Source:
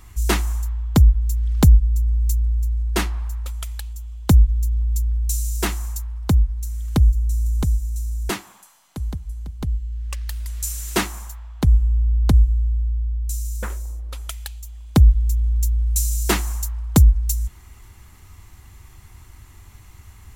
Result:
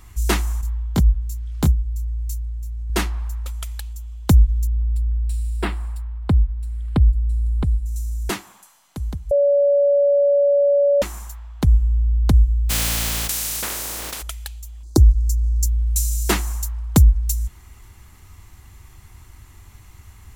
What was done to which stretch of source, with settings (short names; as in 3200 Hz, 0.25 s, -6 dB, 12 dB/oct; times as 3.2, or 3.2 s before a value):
0.61–2.9 detuned doubles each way 12 cents
4.67–7.86 running mean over 7 samples
9.31–11.02 bleep 569 Hz -12.5 dBFS
12.69–14.21 spectral contrast lowered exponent 0.26
14.83–15.66 EQ curve 110 Hz 0 dB, 180 Hz -13 dB, 330 Hz +9 dB, 540 Hz -2 dB, 940 Hz -3 dB, 1600 Hz -10 dB, 2800 Hz -30 dB, 4300 Hz +4 dB, 6300 Hz +8 dB, 13000 Hz +1 dB